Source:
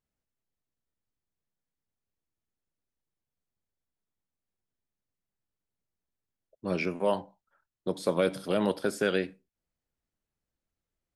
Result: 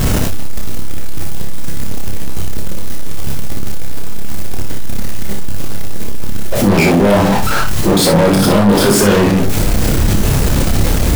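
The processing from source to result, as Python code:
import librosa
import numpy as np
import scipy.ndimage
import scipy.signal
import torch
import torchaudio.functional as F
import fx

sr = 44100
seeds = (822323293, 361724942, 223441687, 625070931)

y = x + 0.5 * 10.0 ** (-32.0 / 20.0) * np.sign(x)
y = fx.leveller(y, sr, passes=3)
y = fx.low_shelf(y, sr, hz=410.0, db=11.0)
y = 10.0 ** (-17.0 / 20.0) * np.tanh(y / 10.0 ** (-17.0 / 20.0))
y = fx.doubler(y, sr, ms=20.0, db=-12)
y = fx.room_early_taps(y, sr, ms=(30, 59), db=(-4.5, -5.0))
y = fx.env_flatten(y, sr, amount_pct=50)
y = y * 10.0 ** (4.0 / 20.0)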